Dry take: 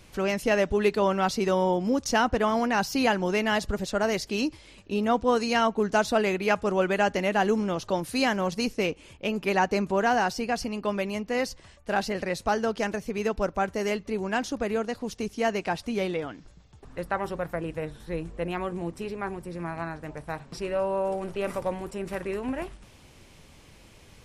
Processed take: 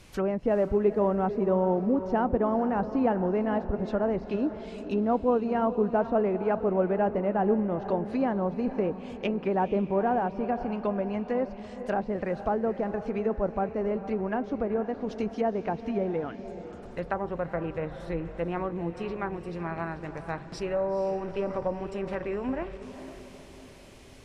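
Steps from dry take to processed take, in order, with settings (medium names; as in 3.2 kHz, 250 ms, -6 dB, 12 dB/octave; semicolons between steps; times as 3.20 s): low-pass that closes with the level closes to 810 Hz, closed at -24 dBFS; echo that smears into a reverb 474 ms, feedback 50%, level -11.5 dB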